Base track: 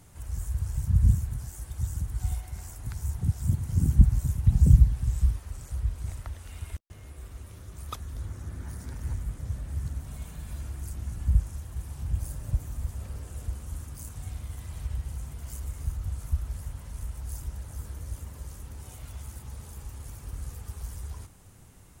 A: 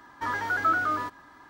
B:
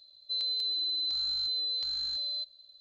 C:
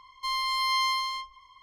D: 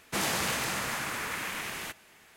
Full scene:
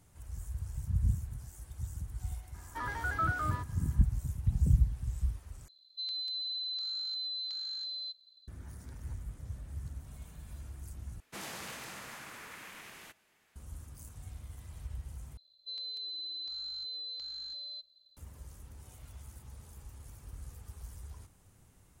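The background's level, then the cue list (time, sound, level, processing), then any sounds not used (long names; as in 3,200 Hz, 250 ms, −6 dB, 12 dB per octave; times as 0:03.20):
base track −9 dB
0:02.54: mix in A −8.5 dB
0:05.68: overwrite with B −5.5 dB + high-pass filter 870 Hz
0:11.20: overwrite with D −13.5 dB
0:15.37: overwrite with B −9 dB
not used: C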